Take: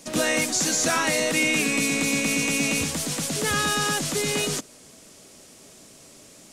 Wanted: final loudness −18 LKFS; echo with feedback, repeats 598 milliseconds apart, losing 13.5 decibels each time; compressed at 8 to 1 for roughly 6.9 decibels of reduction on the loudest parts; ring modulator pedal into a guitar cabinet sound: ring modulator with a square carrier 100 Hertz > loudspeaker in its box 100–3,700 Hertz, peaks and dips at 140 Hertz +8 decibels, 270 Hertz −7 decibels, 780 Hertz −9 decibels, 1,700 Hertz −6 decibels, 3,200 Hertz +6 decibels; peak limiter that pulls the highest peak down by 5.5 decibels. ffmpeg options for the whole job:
ffmpeg -i in.wav -af "acompressor=threshold=-26dB:ratio=8,alimiter=limit=-22.5dB:level=0:latency=1,aecho=1:1:598|1196:0.211|0.0444,aeval=exprs='val(0)*sgn(sin(2*PI*100*n/s))':channel_layout=same,highpass=100,equalizer=frequency=140:width_type=q:width=4:gain=8,equalizer=frequency=270:width_type=q:width=4:gain=-7,equalizer=frequency=780:width_type=q:width=4:gain=-9,equalizer=frequency=1700:width_type=q:width=4:gain=-6,equalizer=frequency=3200:width_type=q:width=4:gain=6,lowpass=frequency=3700:width=0.5412,lowpass=frequency=3700:width=1.3066,volume=15dB" out.wav

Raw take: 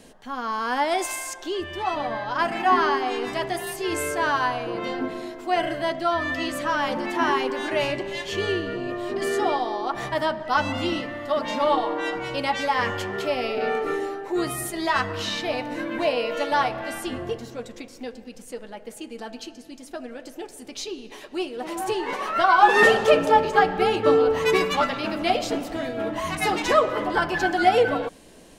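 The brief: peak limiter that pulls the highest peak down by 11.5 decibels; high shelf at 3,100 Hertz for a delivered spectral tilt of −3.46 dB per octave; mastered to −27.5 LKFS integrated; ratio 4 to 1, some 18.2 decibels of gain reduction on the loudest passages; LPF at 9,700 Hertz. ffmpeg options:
ffmpeg -i in.wav -af "lowpass=9700,highshelf=frequency=3100:gain=-9,acompressor=threshold=-35dB:ratio=4,volume=14.5dB,alimiter=limit=-19.5dB:level=0:latency=1" out.wav

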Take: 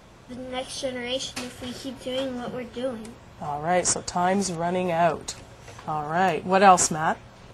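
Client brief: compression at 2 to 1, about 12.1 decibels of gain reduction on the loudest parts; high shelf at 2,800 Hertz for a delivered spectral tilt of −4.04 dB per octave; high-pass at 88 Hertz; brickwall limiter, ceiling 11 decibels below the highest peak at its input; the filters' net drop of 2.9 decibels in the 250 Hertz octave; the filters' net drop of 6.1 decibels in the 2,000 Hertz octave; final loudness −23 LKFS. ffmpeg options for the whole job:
ffmpeg -i in.wav -af "highpass=88,equalizer=frequency=250:width_type=o:gain=-4,equalizer=frequency=2000:width_type=o:gain=-7,highshelf=frequency=2800:gain=-4,acompressor=threshold=-34dB:ratio=2,volume=15dB,alimiter=limit=-12dB:level=0:latency=1" out.wav

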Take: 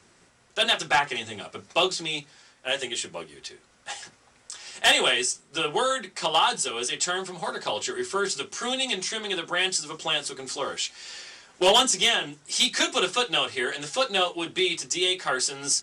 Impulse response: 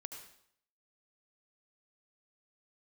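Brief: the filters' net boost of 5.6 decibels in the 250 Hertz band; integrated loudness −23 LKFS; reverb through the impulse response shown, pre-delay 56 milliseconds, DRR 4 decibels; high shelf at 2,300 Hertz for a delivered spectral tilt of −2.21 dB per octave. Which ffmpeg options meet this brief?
-filter_complex "[0:a]equalizer=frequency=250:width_type=o:gain=8.5,highshelf=frequency=2300:gain=-4,asplit=2[link_01][link_02];[1:a]atrim=start_sample=2205,adelay=56[link_03];[link_02][link_03]afir=irnorm=-1:irlink=0,volume=-0.5dB[link_04];[link_01][link_04]amix=inputs=2:normalize=0,volume=1.5dB"

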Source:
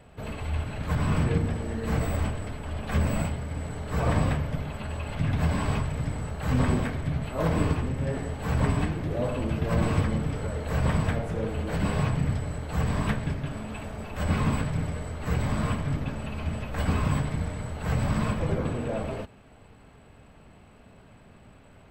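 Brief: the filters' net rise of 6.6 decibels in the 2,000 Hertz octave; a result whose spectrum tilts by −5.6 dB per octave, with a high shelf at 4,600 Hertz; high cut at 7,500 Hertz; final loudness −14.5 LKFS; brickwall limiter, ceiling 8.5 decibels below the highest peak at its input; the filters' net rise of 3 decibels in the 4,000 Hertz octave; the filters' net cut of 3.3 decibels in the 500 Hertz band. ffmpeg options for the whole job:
ffmpeg -i in.wav -af "lowpass=7500,equalizer=frequency=500:width_type=o:gain=-4.5,equalizer=frequency=2000:width_type=o:gain=9,equalizer=frequency=4000:width_type=o:gain=3,highshelf=frequency=4600:gain=-6,volume=16dB,alimiter=limit=-3.5dB:level=0:latency=1" out.wav

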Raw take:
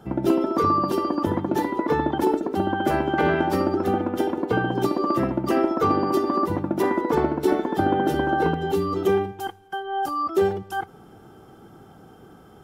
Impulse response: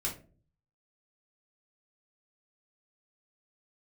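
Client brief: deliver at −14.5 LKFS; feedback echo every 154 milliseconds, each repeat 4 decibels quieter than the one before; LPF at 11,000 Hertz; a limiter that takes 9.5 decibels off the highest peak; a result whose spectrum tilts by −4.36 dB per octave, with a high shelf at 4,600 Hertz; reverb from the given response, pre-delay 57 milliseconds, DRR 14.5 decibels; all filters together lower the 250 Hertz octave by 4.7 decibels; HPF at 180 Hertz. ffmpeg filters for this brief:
-filter_complex "[0:a]highpass=180,lowpass=11000,equalizer=frequency=250:width_type=o:gain=-6,highshelf=frequency=4600:gain=-3.5,alimiter=limit=-19.5dB:level=0:latency=1,aecho=1:1:154|308|462|616|770|924|1078|1232|1386:0.631|0.398|0.25|0.158|0.0994|0.0626|0.0394|0.0249|0.0157,asplit=2[link_01][link_02];[1:a]atrim=start_sample=2205,adelay=57[link_03];[link_02][link_03]afir=irnorm=-1:irlink=0,volume=-17.5dB[link_04];[link_01][link_04]amix=inputs=2:normalize=0,volume=12dB"

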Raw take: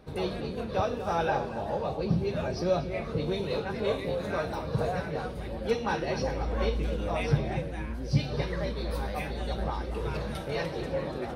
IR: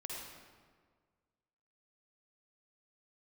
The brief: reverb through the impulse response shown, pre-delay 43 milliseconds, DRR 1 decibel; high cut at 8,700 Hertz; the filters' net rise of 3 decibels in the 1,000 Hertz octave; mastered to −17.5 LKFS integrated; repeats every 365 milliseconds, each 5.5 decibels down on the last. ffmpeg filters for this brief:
-filter_complex "[0:a]lowpass=8700,equalizer=frequency=1000:width_type=o:gain=4,aecho=1:1:365|730|1095|1460|1825|2190|2555:0.531|0.281|0.149|0.079|0.0419|0.0222|0.0118,asplit=2[link_01][link_02];[1:a]atrim=start_sample=2205,adelay=43[link_03];[link_02][link_03]afir=irnorm=-1:irlink=0,volume=-0.5dB[link_04];[link_01][link_04]amix=inputs=2:normalize=0,volume=9.5dB"

